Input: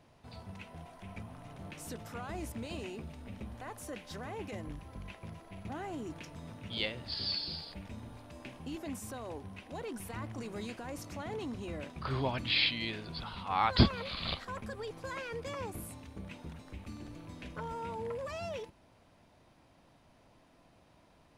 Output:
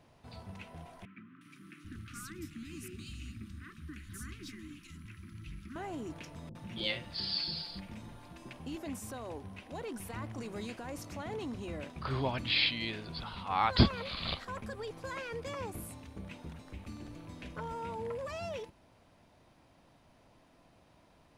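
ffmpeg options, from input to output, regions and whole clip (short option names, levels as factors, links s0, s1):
-filter_complex "[0:a]asettb=1/sr,asplit=3[s0][s1][s2];[s0]atrim=end=1.054[s3];[s1]atrim=start=1.05:end=5.76,asetpts=PTS-STARTPTS,afade=t=in:d=0.004:c=qsin,afade=t=out:st=4.706:d=0.004:c=qsin,asuperstop=centerf=650:order=12:qfactor=0.76,acrossover=split=180|2500[s4][s5][s6];[s6]adelay=360[s7];[s4]adelay=790[s8];[s8][s5][s7]amix=inputs=3:normalize=0,atrim=end_sample=207711[s9];[s2]atrim=start=5.756[s10];[s3][s9]acrossfade=d=0.004:c1=hsin:c2=qsin[s11];[s11][s10]acrossfade=d=0.004:c1=qsin:c2=hsin,asettb=1/sr,asplit=3[s12][s13][s14];[s12]atrim=end=6.494[s15];[s13]atrim=start=6.49:end=8.53,asetpts=PTS-STARTPTS,afade=t=in:d=0.004:c=qsin,afade=t=out:st=2.036:d=0.004:c=qsin,aecho=1:1:5.7:0.5,atrim=end_sample=89964,acrossover=split=530[s16][s17];[s17]adelay=60[s18];[s16][s18]amix=inputs=2:normalize=0,atrim=end_sample=89964[s19];[s14]atrim=start=8.526[s20];[s15][s19]acrossfade=d=0.004:c1=hsin:c2=qsin[s21];[s21][s20]acrossfade=d=0.004:c1=qsin:c2=hsin"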